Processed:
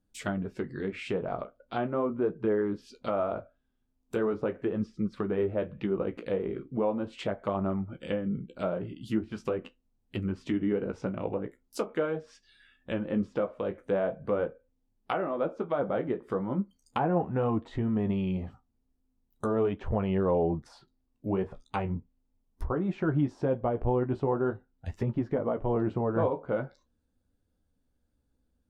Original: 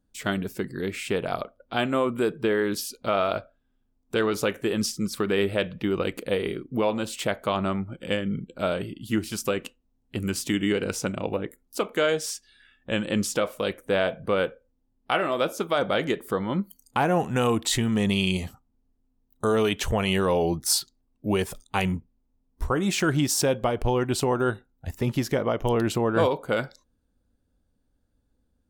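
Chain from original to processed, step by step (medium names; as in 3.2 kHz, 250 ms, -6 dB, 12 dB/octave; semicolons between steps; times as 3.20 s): low-pass that closes with the level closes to 1 kHz, closed at -23.5 dBFS; flange 0.4 Hz, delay 9.5 ms, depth 7.7 ms, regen -39%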